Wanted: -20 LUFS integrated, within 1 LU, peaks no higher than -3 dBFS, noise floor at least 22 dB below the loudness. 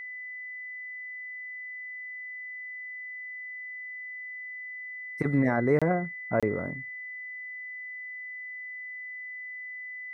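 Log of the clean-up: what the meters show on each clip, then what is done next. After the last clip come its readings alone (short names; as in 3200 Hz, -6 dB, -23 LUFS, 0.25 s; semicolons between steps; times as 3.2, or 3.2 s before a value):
dropouts 2; longest dropout 26 ms; steady tone 2000 Hz; tone level -37 dBFS; loudness -33.0 LUFS; peak -12.5 dBFS; loudness target -20.0 LUFS
-> interpolate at 5.79/6.4, 26 ms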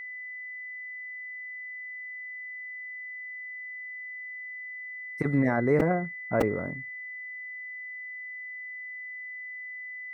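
dropouts 0; steady tone 2000 Hz; tone level -37 dBFS
-> notch 2000 Hz, Q 30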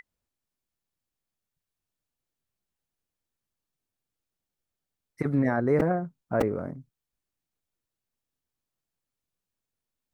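steady tone none; loudness -27.0 LUFS; peak -12.0 dBFS; loudness target -20.0 LUFS
-> gain +7 dB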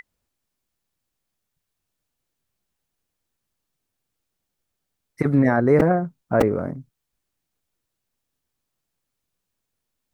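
loudness -20.0 LUFS; peak -5.0 dBFS; noise floor -81 dBFS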